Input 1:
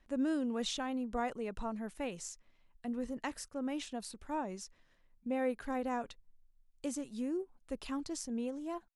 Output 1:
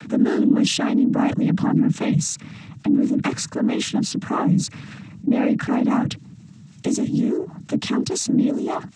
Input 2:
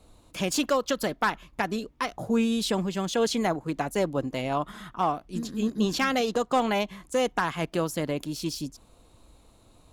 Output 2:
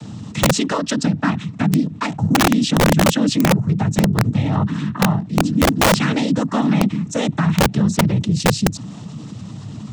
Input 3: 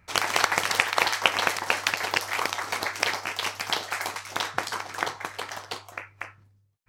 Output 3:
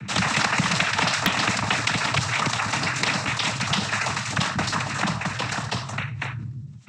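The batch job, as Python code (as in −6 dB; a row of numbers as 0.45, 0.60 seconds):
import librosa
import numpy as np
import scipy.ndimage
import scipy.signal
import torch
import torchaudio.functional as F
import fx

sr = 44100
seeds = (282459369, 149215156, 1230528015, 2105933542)

y = fx.low_shelf_res(x, sr, hz=260.0, db=13.0, q=3.0)
y = fx.noise_vocoder(y, sr, seeds[0], bands=12)
y = (np.mod(10.0 ** (7.5 / 20.0) * y + 1.0, 2.0) - 1.0) / 10.0 ** (7.5 / 20.0)
y = fx.env_flatten(y, sr, amount_pct=50)
y = y * 10.0 ** (-6 / 20.0) / np.max(np.abs(y))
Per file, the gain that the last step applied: +7.5, −1.5, 0.0 decibels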